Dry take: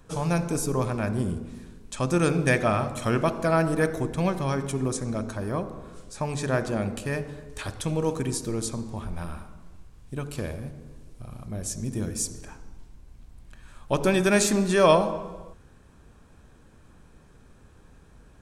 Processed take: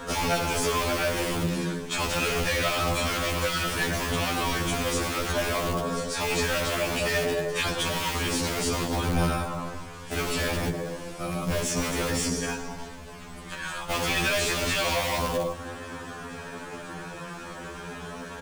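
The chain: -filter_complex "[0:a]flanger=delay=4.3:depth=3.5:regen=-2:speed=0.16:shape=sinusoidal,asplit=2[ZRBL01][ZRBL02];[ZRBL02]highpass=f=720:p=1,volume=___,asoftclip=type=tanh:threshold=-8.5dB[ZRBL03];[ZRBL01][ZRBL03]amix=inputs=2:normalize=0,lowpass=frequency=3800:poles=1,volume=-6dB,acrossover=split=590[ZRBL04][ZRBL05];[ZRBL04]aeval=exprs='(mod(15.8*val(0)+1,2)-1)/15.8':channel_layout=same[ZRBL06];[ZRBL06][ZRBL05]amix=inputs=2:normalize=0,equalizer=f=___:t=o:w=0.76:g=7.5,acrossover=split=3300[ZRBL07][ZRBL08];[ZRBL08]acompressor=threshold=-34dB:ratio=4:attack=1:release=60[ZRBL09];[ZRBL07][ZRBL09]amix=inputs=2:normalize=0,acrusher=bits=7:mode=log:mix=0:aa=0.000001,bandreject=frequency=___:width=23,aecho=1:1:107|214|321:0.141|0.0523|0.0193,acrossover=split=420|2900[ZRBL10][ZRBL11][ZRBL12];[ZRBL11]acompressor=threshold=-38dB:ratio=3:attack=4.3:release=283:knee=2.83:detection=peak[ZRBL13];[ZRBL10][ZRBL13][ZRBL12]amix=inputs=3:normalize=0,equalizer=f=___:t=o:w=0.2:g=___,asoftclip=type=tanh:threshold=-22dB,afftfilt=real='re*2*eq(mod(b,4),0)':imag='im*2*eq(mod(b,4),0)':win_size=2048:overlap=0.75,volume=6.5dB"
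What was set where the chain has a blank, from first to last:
30dB, 68, 3900, 510, 2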